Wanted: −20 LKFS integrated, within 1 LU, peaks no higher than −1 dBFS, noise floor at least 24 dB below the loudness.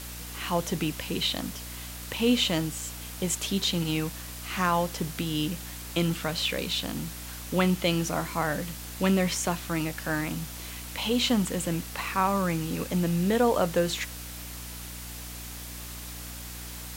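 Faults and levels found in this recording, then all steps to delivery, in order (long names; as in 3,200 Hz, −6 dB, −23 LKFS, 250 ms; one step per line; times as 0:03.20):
mains hum 60 Hz; hum harmonics up to 300 Hz; level of the hum −41 dBFS; background noise floor −40 dBFS; target noise floor −53 dBFS; integrated loudness −29.0 LKFS; sample peak −11.0 dBFS; target loudness −20.0 LKFS
→ hum removal 60 Hz, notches 5
broadband denoise 13 dB, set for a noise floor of −40 dBFS
level +9 dB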